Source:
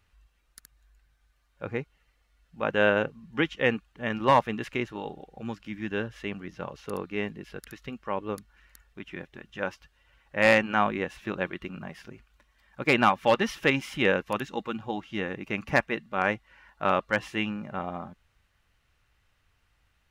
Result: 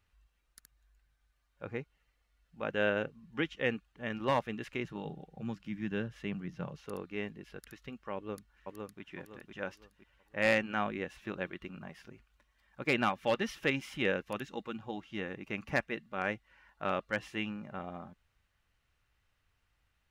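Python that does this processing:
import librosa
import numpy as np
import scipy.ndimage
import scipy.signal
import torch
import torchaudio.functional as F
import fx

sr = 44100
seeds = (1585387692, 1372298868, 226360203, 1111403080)

y = fx.peak_eq(x, sr, hz=160.0, db=12.0, octaves=0.77, at=(4.84, 6.78))
y = fx.echo_throw(y, sr, start_s=8.15, length_s=0.86, ms=510, feedback_pct=35, wet_db=-3.5)
y = fx.dynamic_eq(y, sr, hz=970.0, q=2.0, threshold_db=-40.0, ratio=4.0, max_db=-5)
y = y * librosa.db_to_amplitude(-7.0)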